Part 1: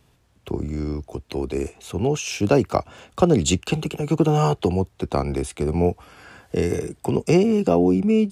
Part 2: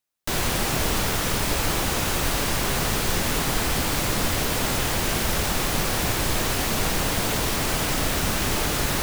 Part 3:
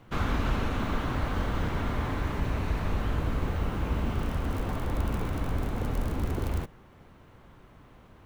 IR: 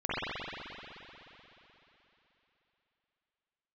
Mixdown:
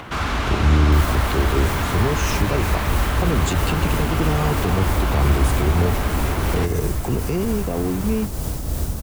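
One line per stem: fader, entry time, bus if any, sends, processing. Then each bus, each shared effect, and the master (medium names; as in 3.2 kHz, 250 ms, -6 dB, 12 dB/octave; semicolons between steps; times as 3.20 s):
+1.0 dB, 0.00 s, bus A, no send, gain riding
-2.0 dB, 0.65 s, bus A, no send, peaking EQ 2.3 kHz -13.5 dB 2.4 oct
-2.5 dB, 0.00 s, no bus, no send, upward compressor, threshold -48 dBFS; overdrive pedal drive 31 dB, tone 4.4 kHz, clips at -16 dBFS; band-stop 500 Hz, Q 12
bus A: 0.0 dB, tremolo triangle 3.1 Hz, depth 45%; peak limiter -15 dBFS, peak gain reduction 9 dB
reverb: none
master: peaking EQ 62 Hz +14 dB 1.5 oct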